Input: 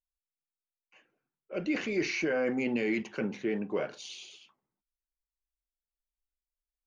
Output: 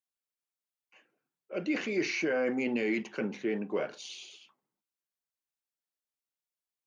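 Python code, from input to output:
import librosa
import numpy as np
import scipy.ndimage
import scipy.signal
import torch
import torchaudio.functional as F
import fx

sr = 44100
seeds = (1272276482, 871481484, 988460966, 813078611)

y = scipy.signal.sosfilt(scipy.signal.butter(2, 160.0, 'highpass', fs=sr, output='sos'), x)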